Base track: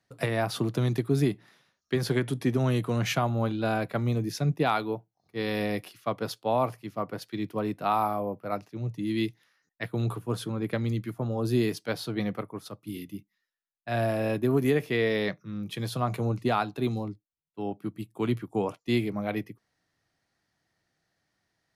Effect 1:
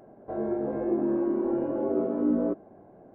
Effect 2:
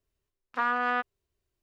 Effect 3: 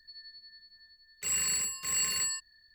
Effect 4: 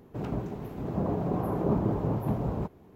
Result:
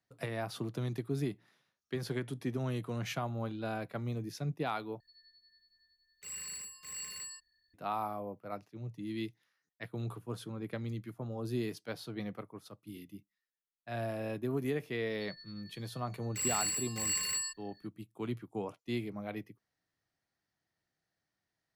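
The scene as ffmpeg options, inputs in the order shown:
ffmpeg -i bed.wav -i cue0.wav -i cue1.wav -i cue2.wav -filter_complex "[3:a]asplit=2[link_01][link_02];[0:a]volume=-10dB,asplit=2[link_03][link_04];[link_03]atrim=end=5.004[link_05];[link_01]atrim=end=2.74,asetpts=PTS-STARTPTS,volume=-13dB[link_06];[link_04]atrim=start=7.736[link_07];[link_02]atrim=end=2.74,asetpts=PTS-STARTPTS,volume=-3.5dB,afade=type=in:duration=0.004:curve=hsin,afade=type=out:start_time=2.736:duration=0.004:curve=hsin,adelay=15130[link_08];[link_05][link_06]acrossfade=duration=0.004:curve1=hsin:curve2=hsin[link_09];[link_09][link_07]acrossfade=duration=0.004:curve1=hsin:curve2=hsin[link_10];[link_10][link_08]amix=inputs=2:normalize=0" out.wav

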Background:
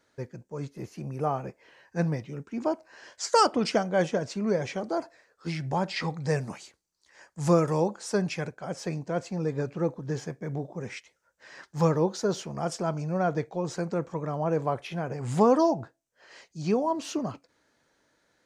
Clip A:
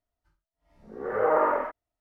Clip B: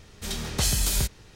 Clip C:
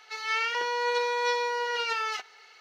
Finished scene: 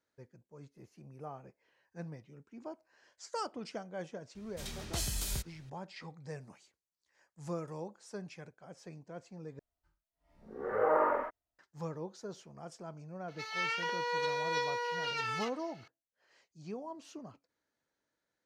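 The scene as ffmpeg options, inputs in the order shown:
ffmpeg -i bed.wav -i cue0.wav -i cue1.wav -i cue2.wav -filter_complex "[0:a]volume=-17dB,asplit=2[link_01][link_02];[link_01]atrim=end=9.594[link_03];[1:a]atrim=end=2,asetpts=PTS-STARTPTS,volume=-5.5dB[link_04];[link_02]atrim=start=11.586[link_05];[2:a]atrim=end=1.35,asetpts=PTS-STARTPTS,volume=-11.5dB,afade=type=in:duration=0.004:curve=hsin,afade=type=out:start_time=1.346:duration=0.004:curve=hsin,adelay=4350[link_06];[3:a]atrim=end=2.6,asetpts=PTS-STARTPTS,volume=-6.5dB,afade=type=in:duration=0.004:curve=hsin,afade=type=out:start_time=2.596:duration=0.004:curve=hsin,adelay=13280[link_07];[link_03][link_04]acrossfade=duration=0.004:curve1=hsin:curve2=hsin[link_08];[link_08][link_05]acrossfade=duration=0.004:curve1=hsin:curve2=hsin[link_09];[link_09][link_06][link_07]amix=inputs=3:normalize=0" out.wav

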